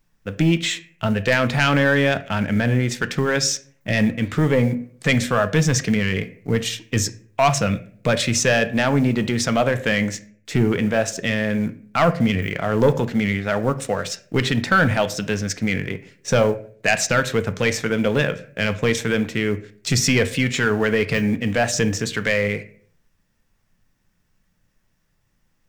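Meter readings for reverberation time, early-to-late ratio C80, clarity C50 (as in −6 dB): 0.50 s, 20.0 dB, 16.0 dB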